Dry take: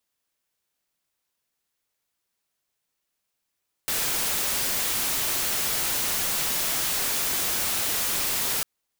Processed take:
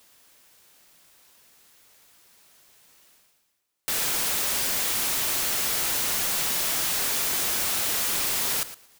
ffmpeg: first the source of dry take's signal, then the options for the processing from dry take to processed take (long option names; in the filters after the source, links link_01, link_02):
-f lavfi -i "anoisesrc=color=white:amplitude=0.0868:duration=4.75:sample_rate=44100:seed=1"
-af "lowshelf=frequency=140:gain=-3,areverse,acompressor=mode=upward:threshold=-38dB:ratio=2.5,areverse,aecho=1:1:113|226:0.2|0.0299"